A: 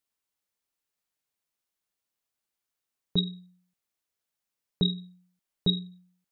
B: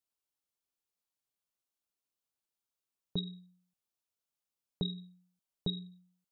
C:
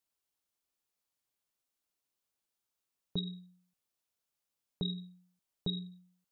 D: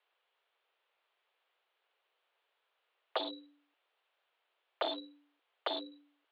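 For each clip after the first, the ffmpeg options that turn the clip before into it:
ffmpeg -i in.wav -af "equalizer=frequency=1900:width_type=o:width=0.53:gain=-7,acompressor=threshold=-25dB:ratio=6,volume=-5.5dB" out.wav
ffmpeg -i in.wav -af "alimiter=level_in=3dB:limit=-24dB:level=0:latency=1:release=90,volume=-3dB,volume=3dB" out.wav
ffmpeg -i in.wav -af "aeval=exprs='0.0133*(abs(mod(val(0)/0.0133+3,4)-2)-1)':channel_layout=same,highpass=frequency=310:width_type=q:width=0.5412,highpass=frequency=310:width_type=q:width=1.307,lowpass=frequency=3300:width_type=q:width=0.5176,lowpass=frequency=3300:width_type=q:width=0.7071,lowpass=frequency=3300:width_type=q:width=1.932,afreqshift=110,volume=15dB" out.wav

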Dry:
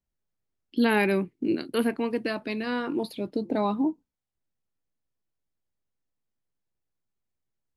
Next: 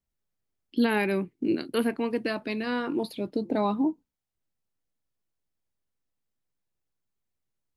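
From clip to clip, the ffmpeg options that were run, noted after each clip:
ffmpeg -i in.wav -af "alimiter=limit=-14.5dB:level=0:latency=1:release=415" out.wav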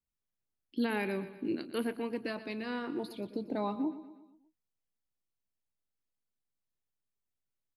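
ffmpeg -i in.wav -af "aecho=1:1:120|240|360|480|600:0.2|0.102|0.0519|0.0265|0.0135,volume=-8dB" out.wav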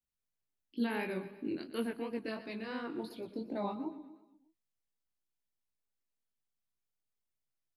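ffmpeg -i in.wav -af "flanger=delay=17:depth=6.1:speed=2.8" out.wav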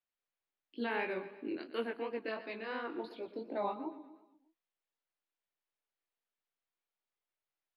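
ffmpeg -i in.wav -filter_complex "[0:a]acrossover=split=320 4000:gain=0.141 1 0.0794[link_01][link_02][link_03];[link_01][link_02][link_03]amix=inputs=3:normalize=0,volume=3dB" out.wav

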